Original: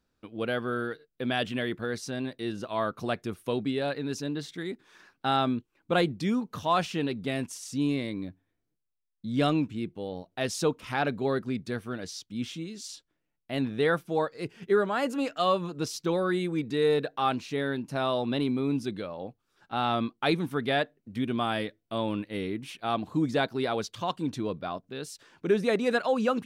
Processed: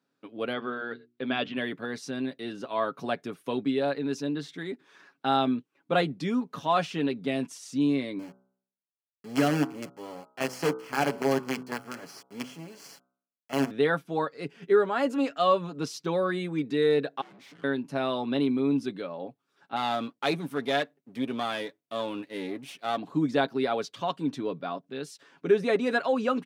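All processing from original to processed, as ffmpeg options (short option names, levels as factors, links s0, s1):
-filter_complex "[0:a]asettb=1/sr,asplit=3[s0][s1][s2];[s0]atrim=end=0.534[s3];[s1]atrim=start=0.53:end=1.57,asetpts=PTS-STARTPTS,afade=t=in:d=0.004:c=qsin,afade=t=out:st=1.036:d=0.004:c=qsin,lowpass=f=4800:w=0.5412,lowpass=f=4800:w=1.3066,bandreject=f=60:t=h:w=6,bandreject=f=120:t=h:w=6,bandreject=f=180:t=h:w=6,bandreject=f=240:t=h:w=6,bandreject=f=300:t=h:w=6,bandreject=f=360:t=h:w=6[s4];[s2]atrim=start=1.566[s5];[s3][s4]acrossfade=d=0.004:c1=hsin:c2=qsin[s6];[s6][s5]acrossfade=d=0.004:c1=qsin:c2=hsin,asettb=1/sr,asplit=3[s7][s8][s9];[s7]atrim=end=8.194[s10];[s8]atrim=start=8.19:end=13.71,asetpts=PTS-STARTPTS,afade=t=in:d=0.004:c=qsin,afade=t=out:st=5.516:d=0.004:c=qsin,acrusher=bits=5:dc=4:mix=0:aa=0.000001,asuperstop=centerf=3700:order=4:qfactor=5.7,bandreject=f=63.5:t=h:w=4,bandreject=f=127:t=h:w=4,bandreject=f=190.5:t=h:w=4,bandreject=f=254:t=h:w=4,bandreject=f=317.5:t=h:w=4,bandreject=f=381:t=h:w=4,bandreject=f=444.5:t=h:w=4,bandreject=f=508:t=h:w=4,bandreject=f=571.5:t=h:w=4,bandreject=f=635:t=h:w=4,bandreject=f=698.5:t=h:w=4,bandreject=f=762:t=h:w=4,bandreject=f=825.5:t=h:w=4,bandreject=f=889:t=h:w=4,bandreject=f=952.5:t=h:w=4,bandreject=f=1016:t=h:w=4,bandreject=f=1079.5:t=h:w=4,bandreject=f=1143:t=h:w=4,bandreject=f=1206.5:t=h:w=4,bandreject=f=1270:t=h:w=4,bandreject=f=1333.5:t=h:w=4,bandreject=f=1397:t=h:w=4,bandreject=f=1460.5:t=h:w=4,bandreject=f=1524:t=h:w=4[s11];[s9]atrim=start=13.706[s12];[s10][s11]acrossfade=d=0.004:c1=hsin:c2=qsin[s13];[s13][s12]acrossfade=d=0.004:c1=qsin:c2=hsin,asettb=1/sr,asplit=3[s14][s15][s16];[s14]atrim=end=17.214[s17];[s15]atrim=start=17.21:end=17.64,asetpts=PTS-STARTPTS,afade=t=in:d=0.004:c=qsin,afade=t=out:st=0.426:d=0.004:c=qsin,acompressor=threshold=0.0178:ratio=6:attack=3.2:release=140:knee=1:detection=peak,afreqshift=-450,aeval=exprs='(tanh(251*val(0)+0.65)-tanh(0.65))/251':c=same[s18];[s16]atrim=start=17.636[s19];[s17][s18]acrossfade=d=0.004:c1=hsin:c2=qsin[s20];[s20][s19]acrossfade=d=0.004:c1=qsin:c2=hsin,asettb=1/sr,asplit=3[s21][s22][s23];[s21]atrim=end=19.764[s24];[s22]atrim=start=19.76:end=22.98,asetpts=PTS-STARTPTS,afade=t=in:d=0.004:c=qsin,afade=t=out:st=3.216:d=0.004:c=qsin,aeval=exprs='if(lt(val(0),0),0.447*val(0),val(0))':c=same,highshelf=f=6200:g=9.5[s25];[s23]atrim=start=22.976[s26];[s24][s25]acrossfade=d=0.004:c1=hsin:c2=qsin[s27];[s27][s26]acrossfade=d=0.004:c1=qsin:c2=hsin,highpass=f=160:w=0.5412,highpass=f=160:w=1.3066,highshelf=f=6200:g=-8.5,aecho=1:1:7.2:0.48"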